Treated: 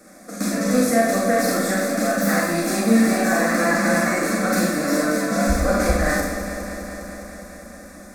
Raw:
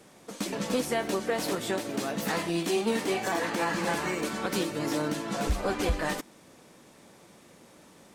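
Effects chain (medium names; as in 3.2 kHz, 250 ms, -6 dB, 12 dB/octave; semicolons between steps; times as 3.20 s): static phaser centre 610 Hz, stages 8; on a send: echo whose repeats swap between lows and highs 102 ms, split 1.3 kHz, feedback 88%, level -8.5 dB; on the sum: Schroeder reverb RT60 0.58 s, combs from 31 ms, DRR -2 dB; trim +8 dB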